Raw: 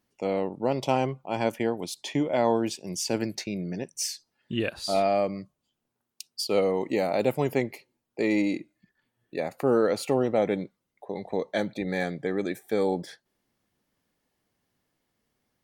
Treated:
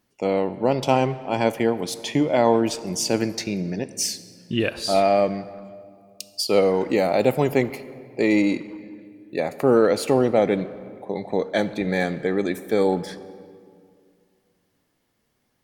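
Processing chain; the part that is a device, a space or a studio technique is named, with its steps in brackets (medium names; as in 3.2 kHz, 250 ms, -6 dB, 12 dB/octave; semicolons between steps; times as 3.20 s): saturated reverb return (on a send at -12.5 dB: reverberation RT60 2.2 s, pre-delay 14 ms + saturation -23.5 dBFS, distortion -12 dB); on the sum: trim +5.5 dB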